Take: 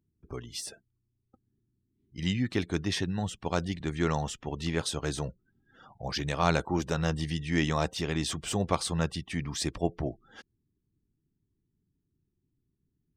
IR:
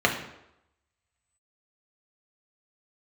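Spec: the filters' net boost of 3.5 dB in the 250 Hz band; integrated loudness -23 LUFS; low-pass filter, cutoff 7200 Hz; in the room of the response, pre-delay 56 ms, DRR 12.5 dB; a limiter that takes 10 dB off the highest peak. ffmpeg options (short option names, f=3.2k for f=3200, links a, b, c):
-filter_complex "[0:a]lowpass=7.2k,equalizer=f=250:t=o:g=5,alimiter=limit=-19dB:level=0:latency=1,asplit=2[a][b];[1:a]atrim=start_sample=2205,adelay=56[c];[b][c]afir=irnorm=-1:irlink=0,volume=-29dB[d];[a][d]amix=inputs=2:normalize=0,volume=9dB"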